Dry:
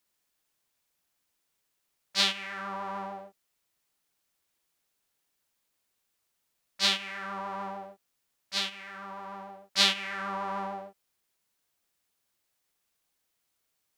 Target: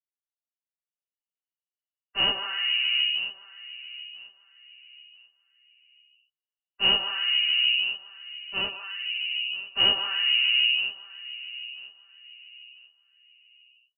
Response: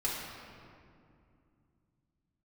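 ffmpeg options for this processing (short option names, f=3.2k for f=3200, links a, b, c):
-filter_complex "[0:a]afreqshift=-330,asubboost=boost=10.5:cutoff=230,dynaudnorm=f=930:g=3:m=5.5dB,asplit=2[a][b];[b]asoftclip=type=hard:threshold=-18dB,volume=-7dB[c];[a][c]amix=inputs=2:normalize=0,afftdn=nr=29:nf=-39,flanger=delay=3.8:depth=3.3:regen=-67:speed=0.23:shape=sinusoidal,asoftclip=type=tanh:threshold=-11dB,asplit=2[d][e];[e]adelay=990,lowpass=f=1.4k:p=1,volume=-16dB,asplit=2[f][g];[g]adelay=990,lowpass=f=1.4k:p=1,volume=0.33,asplit=2[h][i];[i]adelay=990,lowpass=f=1.4k:p=1,volume=0.33[j];[d][f][h][j]amix=inputs=4:normalize=0,lowpass=f=2.6k:t=q:w=0.5098,lowpass=f=2.6k:t=q:w=0.6013,lowpass=f=2.6k:t=q:w=0.9,lowpass=f=2.6k:t=q:w=2.563,afreqshift=-3000,volume=1dB"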